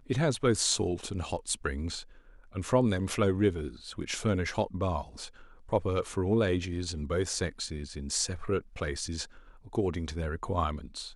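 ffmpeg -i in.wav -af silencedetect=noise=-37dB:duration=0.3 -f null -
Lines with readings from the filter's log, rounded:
silence_start: 2.02
silence_end: 2.55 | silence_duration: 0.53
silence_start: 5.26
silence_end: 5.69 | silence_duration: 0.43
silence_start: 9.25
silence_end: 9.67 | silence_duration: 0.42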